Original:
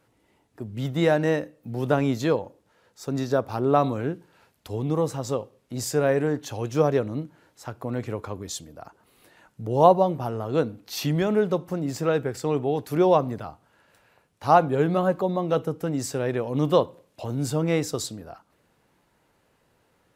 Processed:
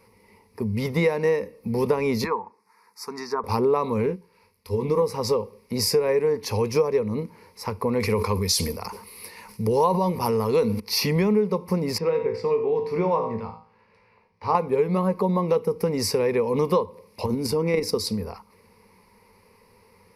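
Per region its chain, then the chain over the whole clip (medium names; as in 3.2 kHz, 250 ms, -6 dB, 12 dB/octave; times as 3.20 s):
2.24–3.44 s: high-pass 440 Hz + low-pass that closes with the level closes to 1.5 kHz, closed at -23 dBFS + static phaser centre 1.3 kHz, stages 4
4.06–5.02 s: band-stop 770 Hz, Q 7.2 + doubling 22 ms -8 dB + upward expansion, over -40 dBFS
8.00–10.80 s: treble shelf 2.1 kHz +9.5 dB + decay stretcher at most 87 dB/s
11.98–14.55 s: low-pass 3.5 kHz + feedback comb 56 Hz, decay 0.42 s, mix 80% + delay 83 ms -13 dB
17.26–18.07 s: peaking EQ 290 Hz +8 dB 0.65 oct + level held to a coarse grid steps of 9 dB
whole clip: rippled EQ curve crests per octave 0.87, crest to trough 16 dB; compression 5:1, threshold -25 dBFS; trim +6 dB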